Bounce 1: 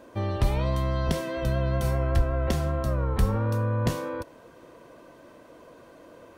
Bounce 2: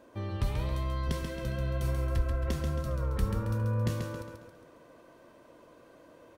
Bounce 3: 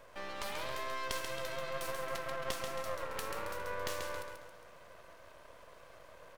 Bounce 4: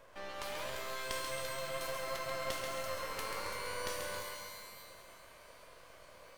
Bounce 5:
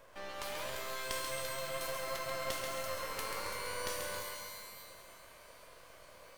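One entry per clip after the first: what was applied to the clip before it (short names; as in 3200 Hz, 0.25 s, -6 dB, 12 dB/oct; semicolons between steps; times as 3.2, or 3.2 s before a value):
dynamic EQ 720 Hz, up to -8 dB, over -49 dBFS, Q 2.5; on a send: feedback echo 0.136 s, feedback 45%, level -5.5 dB; on the sum: gain -7 dB
HPF 520 Hz 24 dB/oct; half-wave rectifier; gain +7 dB
shimmer reverb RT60 1.5 s, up +12 st, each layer -2 dB, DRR 5.5 dB; gain -2.5 dB
high shelf 7500 Hz +4.5 dB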